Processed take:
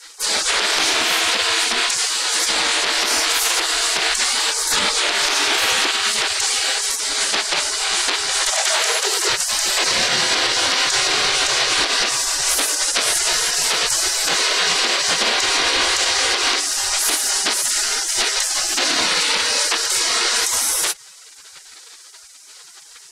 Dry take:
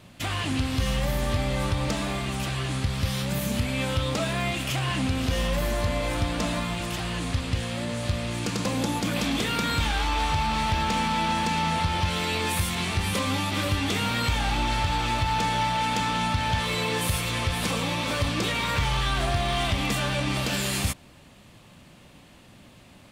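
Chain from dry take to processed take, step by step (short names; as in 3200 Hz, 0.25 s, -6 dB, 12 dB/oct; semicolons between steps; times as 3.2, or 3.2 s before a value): LPF 7800 Hz 12 dB/oct; spectral gate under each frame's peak -25 dB weak; compressor, threshold -37 dBFS, peak gain reduction 4.5 dB; 8.51–9.28 resonant high-pass 720 Hz -> 340 Hz, resonance Q 4.9; maximiser +31.5 dB; gain -6.5 dB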